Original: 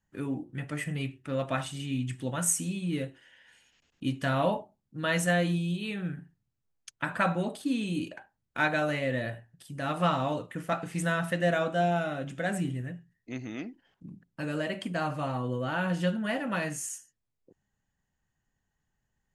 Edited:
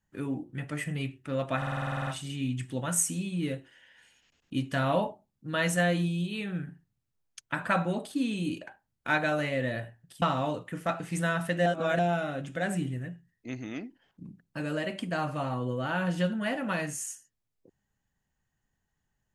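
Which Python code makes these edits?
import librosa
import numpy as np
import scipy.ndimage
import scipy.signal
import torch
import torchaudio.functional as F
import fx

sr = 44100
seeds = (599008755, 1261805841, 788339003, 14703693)

y = fx.edit(x, sr, fx.stutter(start_s=1.57, slice_s=0.05, count=11),
    fx.cut(start_s=9.72, length_s=0.33),
    fx.reverse_span(start_s=11.49, length_s=0.33), tone=tone)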